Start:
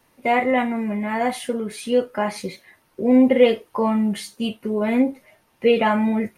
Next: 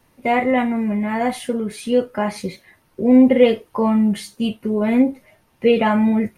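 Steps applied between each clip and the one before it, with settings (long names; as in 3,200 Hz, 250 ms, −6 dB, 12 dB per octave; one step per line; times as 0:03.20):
low-shelf EQ 200 Hz +9 dB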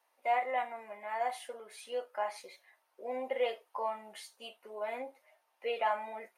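four-pole ladder high-pass 580 Hz, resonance 40%
level −6.5 dB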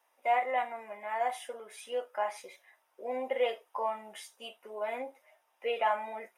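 Butterworth band-reject 4,300 Hz, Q 6.3
level +2.5 dB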